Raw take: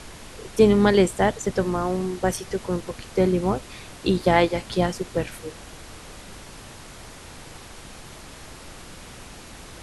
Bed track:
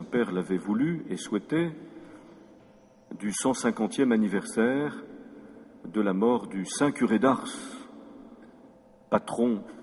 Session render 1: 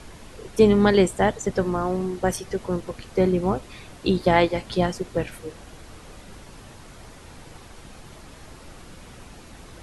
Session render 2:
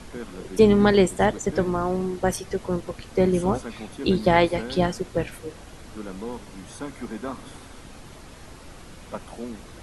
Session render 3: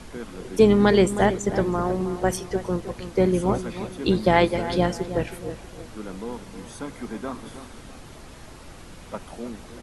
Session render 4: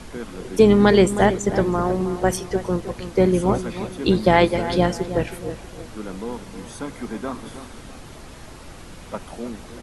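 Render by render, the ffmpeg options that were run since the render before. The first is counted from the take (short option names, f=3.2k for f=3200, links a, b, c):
-af "afftdn=nr=6:nf=-43"
-filter_complex "[1:a]volume=-10.5dB[a];[0:a][a]amix=inputs=2:normalize=0"
-filter_complex "[0:a]asplit=2[a][b];[b]adelay=317,lowpass=f=2k:p=1,volume=-11.5dB,asplit=2[c][d];[d]adelay=317,lowpass=f=2k:p=1,volume=0.4,asplit=2[e][f];[f]adelay=317,lowpass=f=2k:p=1,volume=0.4,asplit=2[g][h];[h]adelay=317,lowpass=f=2k:p=1,volume=0.4[i];[a][c][e][g][i]amix=inputs=5:normalize=0"
-af "volume=3dB,alimiter=limit=-3dB:level=0:latency=1"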